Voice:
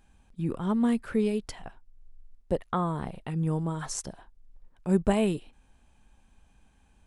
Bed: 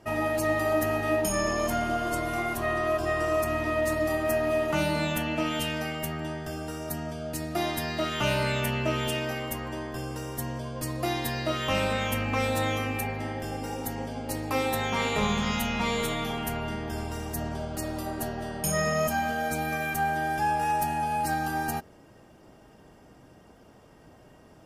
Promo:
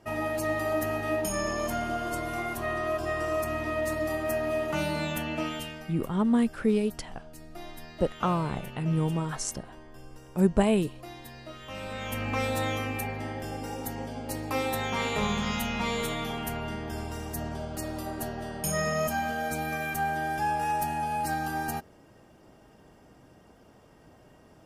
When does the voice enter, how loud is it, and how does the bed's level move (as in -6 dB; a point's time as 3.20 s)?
5.50 s, +1.5 dB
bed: 5.45 s -3 dB
5.95 s -15 dB
11.66 s -15 dB
12.27 s -2 dB